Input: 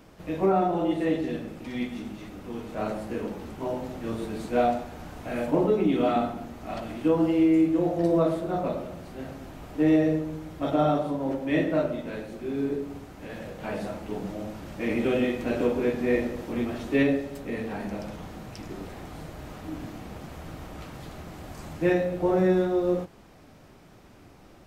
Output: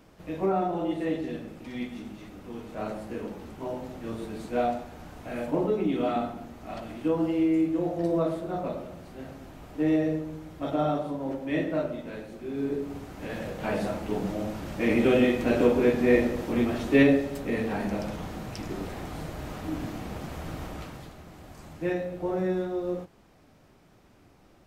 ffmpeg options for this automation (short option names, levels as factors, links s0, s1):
-af "volume=1.5,afade=t=in:st=12.51:d=0.74:silence=0.446684,afade=t=out:st=20.65:d=0.5:silence=0.334965"